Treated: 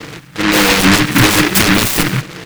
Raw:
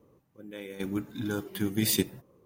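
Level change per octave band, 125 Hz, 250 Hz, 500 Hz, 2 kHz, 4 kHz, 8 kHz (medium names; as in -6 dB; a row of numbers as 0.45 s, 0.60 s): +20.0 dB, +18.0 dB, +17.5 dB, +29.5 dB, +23.0 dB, +19.5 dB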